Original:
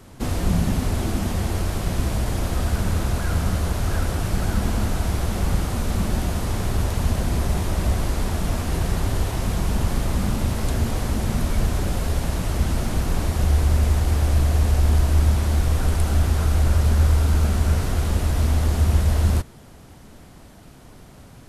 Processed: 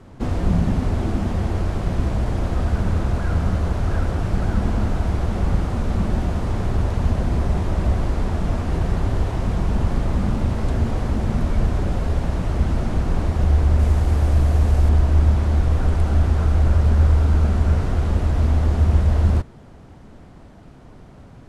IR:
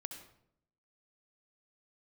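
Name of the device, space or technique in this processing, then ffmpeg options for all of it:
through cloth: -filter_complex "[0:a]lowpass=8.5k,highshelf=f=2.6k:g=-12.5,asettb=1/sr,asplit=3[a][b][c];[a]atrim=end=13.794[d];[b]atrim=start=13.79:end=14.89,asetpts=PTS-STARTPTS,afade=t=in:d=0.004:c=qsin,afade=t=out:st=1.096:d=0.004:c=qsin,highshelf=f=8.8k:g=9.5[e];[c]atrim=start=14.886[f];[d][e]acrossfade=d=0.004:c1=hsin:c2=qsin[g];[g][f]acrossfade=d=0.004:c1=qsin:c2=hsin,volume=2dB"

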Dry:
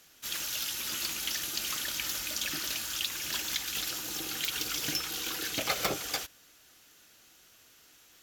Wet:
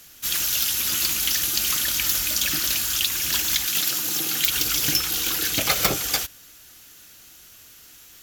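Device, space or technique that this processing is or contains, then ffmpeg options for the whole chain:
smiley-face EQ: -filter_complex "[0:a]asettb=1/sr,asplit=3[a][b][c];[a]atrim=end=3.664[d];[b]atrim=start=3.66:end=4.46,asetpts=PTS-STARTPTS,afade=t=in:d=0.004:c=qsin,afade=t=out:st=0.796:d=0.004:c=qsin,highpass=f=120:w=0.5412,highpass=f=120:w=1.3066[e];[c]atrim=start=4.456[f];[d][e]acrossfade=d=0.004:c1=hsin:c2=qsin[g];[g][f]acrossfade=d=0.004:c1=qsin:c2=hsin,lowshelf=f=140:g=7.5,equalizer=f=540:t=o:w=2:g=-3,highshelf=f=8.9k:g=8.5,volume=8dB"

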